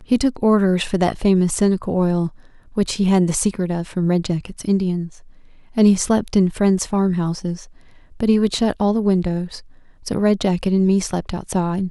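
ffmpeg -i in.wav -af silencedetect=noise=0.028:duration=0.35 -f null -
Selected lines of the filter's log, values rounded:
silence_start: 2.29
silence_end: 2.77 | silence_duration: 0.48
silence_start: 5.08
silence_end: 5.77 | silence_duration: 0.69
silence_start: 7.64
silence_end: 8.20 | silence_duration: 0.57
silence_start: 9.59
silence_end: 10.06 | silence_duration: 0.47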